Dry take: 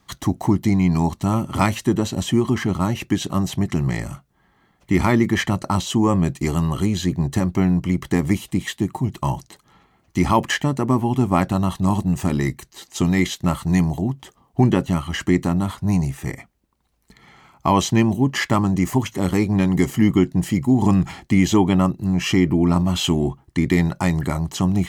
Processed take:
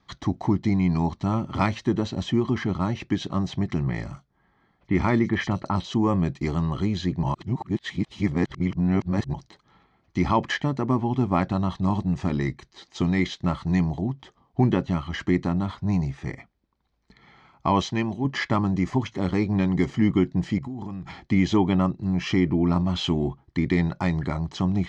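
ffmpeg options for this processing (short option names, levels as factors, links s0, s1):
-filter_complex "[0:a]asettb=1/sr,asplit=3[s0][s1][s2];[s0]atrim=end=3.834[s3];[s1]atrim=start=3.83:end=5.94,asetpts=PTS-STARTPTS,afade=t=in:d=0.004:c=qsin,afade=t=out:st=2.106:d=0.004:c=qsin,acrossover=split=3700[s4][s5];[s5]adelay=40[s6];[s4][s6]amix=inputs=2:normalize=0,atrim=end_sample=93051[s7];[s2]atrim=start=5.936[s8];[s3][s7]acrossfade=d=0.004:c1=hsin:c2=qsin[s9];[s9][s8]acrossfade=d=0.004:c1=qsin:c2=hsin,asettb=1/sr,asplit=3[s10][s11][s12];[s10]atrim=end=17.824[s13];[s11]atrim=start=17.82:end=18.25,asetpts=PTS-STARTPTS,afade=t=in:d=0.004:c=qsin,afade=t=out:st=0.426:d=0.004:c=qsin,lowshelf=f=440:g=-6.5[s14];[s12]atrim=start=18.246[s15];[s13][s14]acrossfade=d=0.004:c1=hsin:c2=qsin[s16];[s16][s15]acrossfade=d=0.004:c1=qsin:c2=hsin,asettb=1/sr,asplit=3[s17][s18][s19];[s17]atrim=end=20.584[s20];[s18]atrim=start=20.58:end=21.23,asetpts=PTS-STARTPTS,afade=t=in:d=0.004:c=qsin,afade=t=out:st=0.646:d=0.004:c=qsin,acompressor=threshold=0.0562:ratio=16:attack=3.2:release=140:knee=1:detection=peak[s21];[s19]atrim=start=21.226[s22];[s20][s21]acrossfade=d=0.004:c1=hsin:c2=qsin[s23];[s23][s22]acrossfade=d=0.004:c1=qsin:c2=hsin,asplit=3[s24][s25][s26];[s24]atrim=end=7.232[s27];[s25]atrim=start=7.228:end=9.342,asetpts=PTS-STARTPTS,areverse[s28];[s26]atrim=start=9.338[s29];[s27][s28]acrossfade=d=0.004:c1=hsin:c2=hsin[s30];[s30][s29]acrossfade=d=0.004:c1=hsin:c2=hsin,lowpass=f=5100:w=0.5412,lowpass=f=5100:w=1.3066,bandreject=f=2800:w=11,volume=0.596"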